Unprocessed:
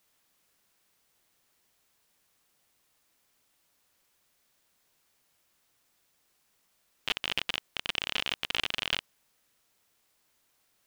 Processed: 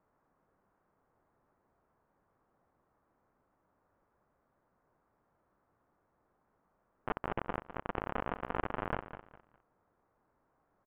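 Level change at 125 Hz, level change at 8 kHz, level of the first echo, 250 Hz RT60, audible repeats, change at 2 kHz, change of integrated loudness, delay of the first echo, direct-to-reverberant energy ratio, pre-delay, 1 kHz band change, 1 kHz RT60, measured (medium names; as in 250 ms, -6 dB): +7.0 dB, under -30 dB, -12.0 dB, no reverb, 3, -9.5 dB, -7.5 dB, 204 ms, no reverb, no reverb, +4.5 dB, no reverb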